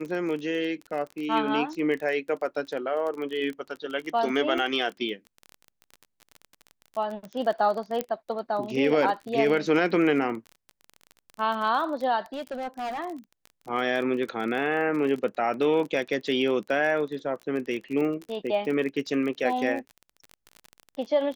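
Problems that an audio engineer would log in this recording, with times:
crackle 28 per s -32 dBFS
4.58 s: dropout 2.7 ms
8.01 s: pop -13 dBFS
12.33–13.00 s: clipped -29 dBFS

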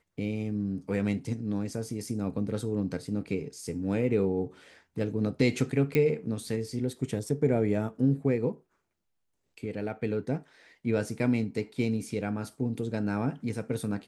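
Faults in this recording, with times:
5.95 s: pop -14 dBFS

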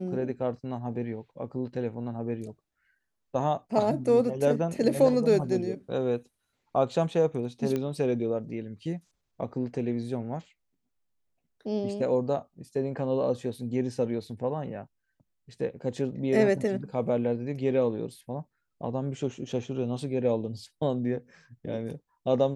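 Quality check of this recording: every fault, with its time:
7.76 s: pop -18 dBFS

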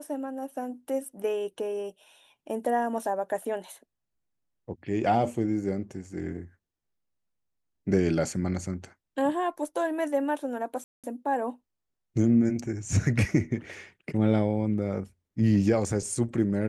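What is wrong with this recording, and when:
10.84–11.04 s: dropout 197 ms

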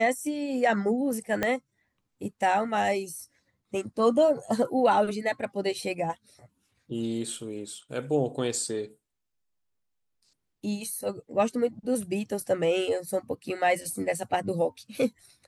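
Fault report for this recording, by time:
1.43 s: pop -12 dBFS

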